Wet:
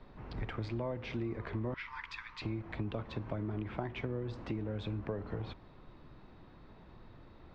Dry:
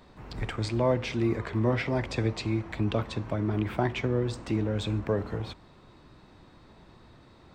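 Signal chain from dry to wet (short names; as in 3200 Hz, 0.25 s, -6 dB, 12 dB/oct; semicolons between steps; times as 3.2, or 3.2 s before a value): 1.74–2.42 steep high-pass 920 Hz 96 dB/oct; compressor 6:1, threshold -31 dBFS, peak gain reduction 11 dB; added noise brown -55 dBFS; air absorption 210 m; gain -2.5 dB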